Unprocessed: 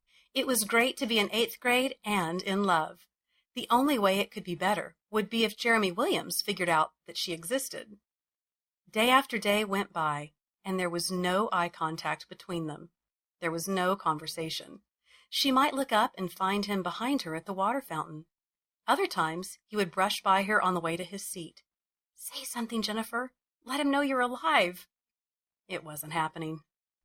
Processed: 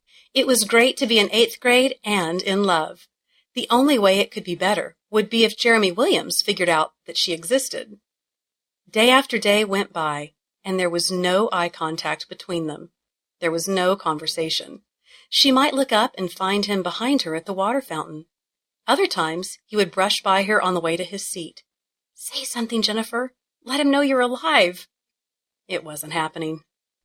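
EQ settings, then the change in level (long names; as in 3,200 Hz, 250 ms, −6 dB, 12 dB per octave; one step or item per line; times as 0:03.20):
octave-band graphic EQ 250/500/2,000/4,000/8,000 Hz +6/+9/+4/+10/+7 dB
+2.0 dB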